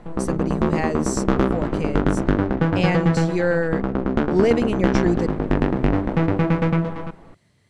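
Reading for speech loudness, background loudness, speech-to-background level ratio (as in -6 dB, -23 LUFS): -25.0 LUFS, -22.0 LUFS, -3.0 dB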